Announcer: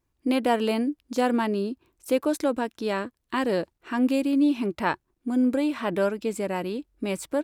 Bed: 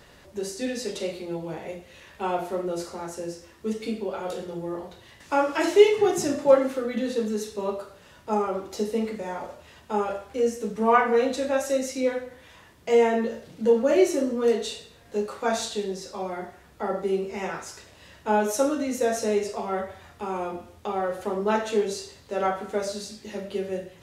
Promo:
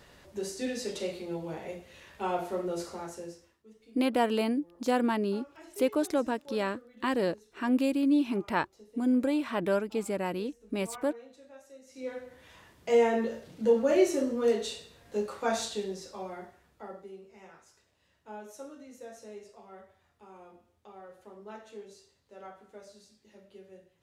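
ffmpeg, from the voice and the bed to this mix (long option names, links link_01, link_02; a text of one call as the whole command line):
ffmpeg -i stem1.wav -i stem2.wav -filter_complex "[0:a]adelay=3700,volume=-3.5dB[link_01];[1:a]volume=19dB,afade=type=out:start_time=2.95:duration=0.68:silence=0.0707946,afade=type=in:start_time=11.86:duration=0.68:silence=0.0707946,afade=type=out:start_time=15.61:duration=1.51:silence=0.133352[link_02];[link_01][link_02]amix=inputs=2:normalize=0" out.wav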